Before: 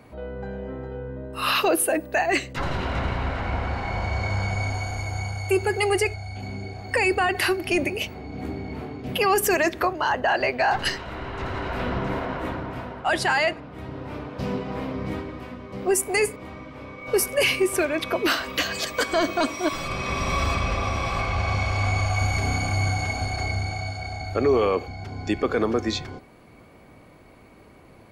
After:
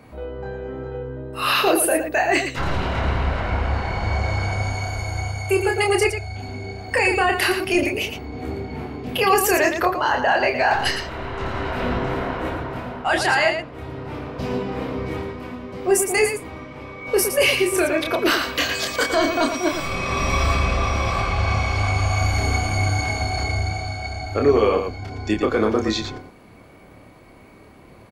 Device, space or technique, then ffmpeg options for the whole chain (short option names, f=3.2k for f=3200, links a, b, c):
slapback doubling: -filter_complex "[0:a]asplit=3[a][b][c];[b]adelay=28,volume=-4dB[d];[c]adelay=114,volume=-7dB[e];[a][d][e]amix=inputs=3:normalize=0,volume=1.5dB"